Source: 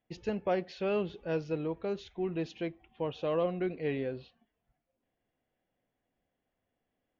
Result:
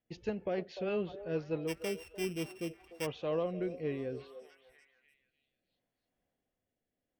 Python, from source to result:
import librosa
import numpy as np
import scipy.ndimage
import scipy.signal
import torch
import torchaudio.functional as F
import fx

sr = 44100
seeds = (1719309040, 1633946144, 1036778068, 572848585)

y = fx.sample_sort(x, sr, block=16, at=(1.67, 3.05), fade=0.02)
y = fx.echo_stepped(y, sr, ms=297, hz=580.0, octaves=0.7, feedback_pct=70, wet_db=-10.0)
y = fx.rotary_switch(y, sr, hz=6.3, then_hz=0.65, switch_at_s=1.94)
y = F.gain(torch.from_numpy(y), -1.5).numpy()